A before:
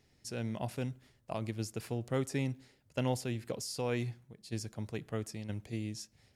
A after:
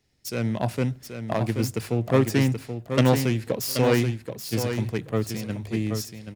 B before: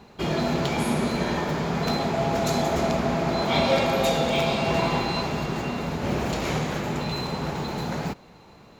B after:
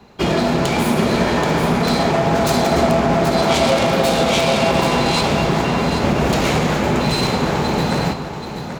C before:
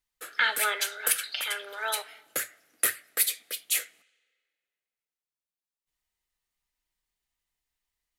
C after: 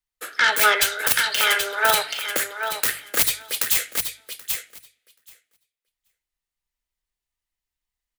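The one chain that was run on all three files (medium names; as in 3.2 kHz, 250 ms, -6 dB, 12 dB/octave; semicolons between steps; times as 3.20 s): self-modulated delay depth 0.16 ms; hum notches 50/100/150 Hz; compression, threshold -25 dBFS; on a send: feedback delay 780 ms, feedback 16%, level -6 dB; on the sum: loudness maximiser +16.5 dB; three bands expanded up and down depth 40%; trim -4.5 dB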